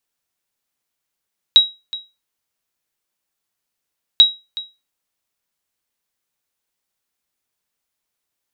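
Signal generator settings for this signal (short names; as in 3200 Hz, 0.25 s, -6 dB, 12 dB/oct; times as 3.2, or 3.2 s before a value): sonar ping 3840 Hz, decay 0.25 s, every 2.64 s, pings 2, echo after 0.37 s, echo -18 dB -1 dBFS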